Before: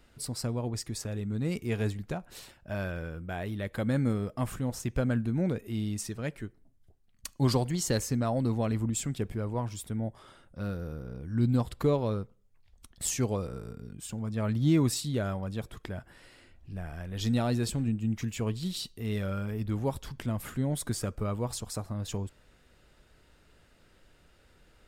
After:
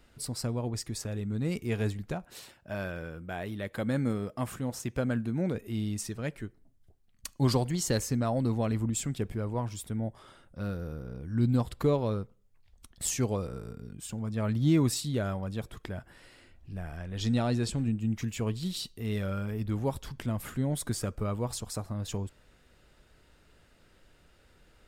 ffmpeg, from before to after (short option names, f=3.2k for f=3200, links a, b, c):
-filter_complex "[0:a]asettb=1/sr,asplit=3[a][b][c];[a]atrim=end=2.244[d];[b]atrim=start=2.24:end=5.55,asetpts=PTS-STARTPTS,afade=t=in:d=0.004:c=qsin,afade=t=out:st=3.306:d=0.004:c=qsin,highpass=f=130:p=1[e];[c]atrim=start=5.546[f];[d][e]acrossfade=d=0.004:c1=hsin:c2=qsin[g];[g][f]acrossfade=d=0.004:c1=qsin:c2=hsin,asettb=1/sr,asplit=3[h][i][j];[h]atrim=end=16.974[k];[i]atrim=start=16.97:end=17.77,asetpts=PTS-STARTPTS,afade=t=in:d=0.004:c=qsin,afade=t=out:st=0.796:d=0.004:c=qsin,lowpass=8.9k[l];[j]atrim=start=17.766[m];[k][l]acrossfade=d=0.004:c1=hsin:c2=qsin[n];[n][m]acrossfade=d=0.004:c1=qsin:c2=hsin"